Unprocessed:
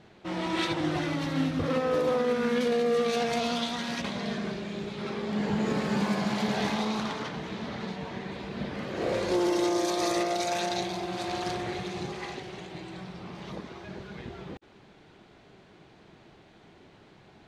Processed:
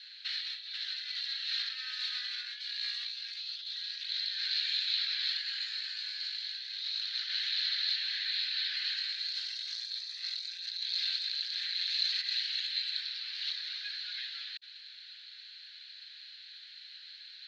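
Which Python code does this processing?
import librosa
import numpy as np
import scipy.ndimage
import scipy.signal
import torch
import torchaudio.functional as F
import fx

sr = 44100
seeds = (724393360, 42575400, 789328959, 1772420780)

y = scipy.signal.sosfilt(scipy.signal.cheby1(5, 1.0, 1600.0, 'highpass', fs=sr, output='sos'), x)
y = fx.peak_eq(y, sr, hz=2200.0, db=-3.5, octaves=0.37)
y = fx.over_compress(y, sr, threshold_db=-48.0, ratio=-1.0)
y = fx.lowpass_res(y, sr, hz=4200.0, q=12.0)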